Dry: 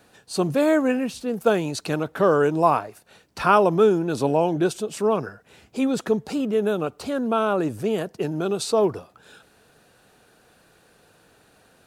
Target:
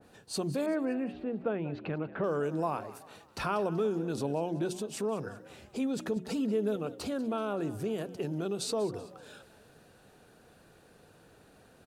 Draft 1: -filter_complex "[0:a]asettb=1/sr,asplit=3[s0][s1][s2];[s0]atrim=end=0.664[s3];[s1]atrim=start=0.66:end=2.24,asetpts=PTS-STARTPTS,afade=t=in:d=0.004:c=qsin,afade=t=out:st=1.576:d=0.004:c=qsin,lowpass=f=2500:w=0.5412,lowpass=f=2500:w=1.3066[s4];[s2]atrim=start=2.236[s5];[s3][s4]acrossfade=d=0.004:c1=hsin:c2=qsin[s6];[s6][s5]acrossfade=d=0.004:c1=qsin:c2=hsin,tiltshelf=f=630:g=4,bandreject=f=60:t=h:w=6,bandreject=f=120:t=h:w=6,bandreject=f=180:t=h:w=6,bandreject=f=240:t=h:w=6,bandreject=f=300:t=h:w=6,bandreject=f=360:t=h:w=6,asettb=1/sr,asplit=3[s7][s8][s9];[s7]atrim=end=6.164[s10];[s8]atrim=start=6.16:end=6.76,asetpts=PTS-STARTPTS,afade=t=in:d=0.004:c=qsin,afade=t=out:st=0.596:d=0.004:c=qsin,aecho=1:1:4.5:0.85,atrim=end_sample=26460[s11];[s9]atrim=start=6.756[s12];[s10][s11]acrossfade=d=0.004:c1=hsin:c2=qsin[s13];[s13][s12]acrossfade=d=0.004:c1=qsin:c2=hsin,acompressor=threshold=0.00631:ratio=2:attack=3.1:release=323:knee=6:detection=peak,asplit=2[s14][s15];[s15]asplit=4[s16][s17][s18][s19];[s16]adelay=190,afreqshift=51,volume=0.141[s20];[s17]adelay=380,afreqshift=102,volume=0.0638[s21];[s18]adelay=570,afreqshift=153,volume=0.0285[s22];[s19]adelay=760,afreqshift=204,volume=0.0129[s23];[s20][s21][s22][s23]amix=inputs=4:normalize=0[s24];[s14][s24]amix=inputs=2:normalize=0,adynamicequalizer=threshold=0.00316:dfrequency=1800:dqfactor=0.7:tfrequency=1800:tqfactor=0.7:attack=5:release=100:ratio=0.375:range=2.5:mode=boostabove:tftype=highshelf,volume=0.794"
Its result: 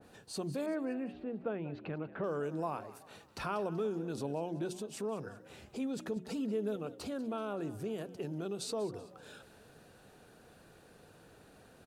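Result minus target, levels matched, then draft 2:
compression: peak gain reduction +5 dB
-filter_complex "[0:a]asettb=1/sr,asplit=3[s0][s1][s2];[s0]atrim=end=0.664[s3];[s1]atrim=start=0.66:end=2.24,asetpts=PTS-STARTPTS,afade=t=in:d=0.004:c=qsin,afade=t=out:st=1.576:d=0.004:c=qsin,lowpass=f=2500:w=0.5412,lowpass=f=2500:w=1.3066[s4];[s2]atrim=start=2.236[s5];[s3][s4]acrossfade=d=0.004:c1=hsin:c2=qsin[s6];[s6][s5]acrossfade=d=0.004:c1=qsin:c2=hsin,tiltshelf=f=630:g=4,bandreject=f=60:t=h:w=6,bandreject=f=120:t=h:w=6,bandreject=f=180:t=h:w=6,bandreject=f=240:t=h:w=6,bandreject=f=300:t=h:w=6,bandreject=f=360:t=h:w=6,asettb=1/sr,asplit=3[s7][s8][s9];[s7]atrim=end=6.164[s10];[s8]atrim=start=6.16:end=6.76,asetpts=PTS-STARTPTS,afade=t=in:d=0.004:c=qsin,afade=t=out:st=0.596:d=0.004:c=qsin,aecho=1:1:4.5:0.85,atrim=end_sample=26460[s11];[s9]atrim=start=6.756[s12];[s10][s11]acrossfade=d=0.004:c1=hsin:c2=qsin[s13];[s13][s12]acrossfade=d=0.004:c1=qsin:c2=hsin,acompressor=threshold=0.02:ratio=2:attack=3.1:release=323:knee=6:detection=peak,asplit=2[s14][s15];[s15]asplit=4[s16][s17][s18][s19];[s16]adelay=190,afreqshift=51,volume=0.141[s20];[s17]adelay=380,afreqshift=102,volume=0.0638[s21];[s18]adelay=570,afreqshift=153,volume=0.0285[s22];[s19]adelay=760,afreqshift=204,volume=0.0129[s23];[s20][s21][s22][s23]amix=inputs=4:normalize=0[s24];[s14][s24]amix=inputs=2:normalize=0,adynamicequalizer=threshold=0.00316:dfrequency=1800:dqfactor=0.7:tfrequency=1800:tqfactor=0.7:attack=5:release=100:ratio=0.375:range=2.5:mode=boostabove:tftype=highshelf,volume=0.794"

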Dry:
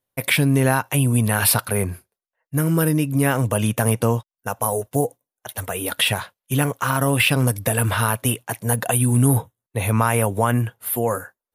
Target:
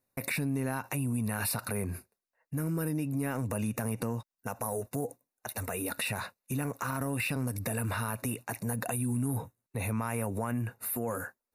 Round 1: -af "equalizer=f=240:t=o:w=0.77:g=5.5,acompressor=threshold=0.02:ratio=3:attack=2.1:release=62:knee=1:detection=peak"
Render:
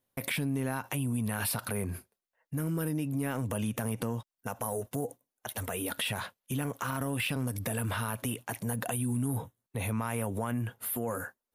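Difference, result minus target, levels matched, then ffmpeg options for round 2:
4 kHz band +4.0 dB
-af "asuperstop=centerf=3200:order=8:qfactor=4.4,equalizer=f=240:t=o:w=0.77:g=5.5,acompressor=threshold=0.02:ratio=3:attack=2.1:release=62:knee=1:detection=peak"

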